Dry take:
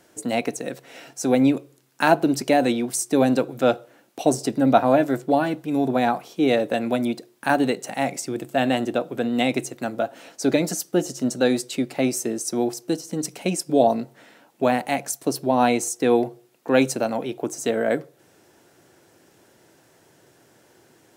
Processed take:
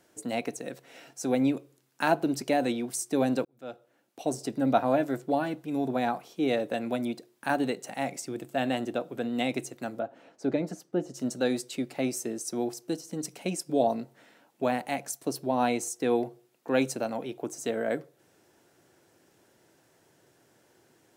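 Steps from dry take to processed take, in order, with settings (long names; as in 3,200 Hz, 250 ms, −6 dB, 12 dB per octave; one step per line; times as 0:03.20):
0:03.45–0:04.63: fade in linear
0:09.99–0:11.14: low-pass filter 1,200 Hz 6 dB per octave
level −7.5 dB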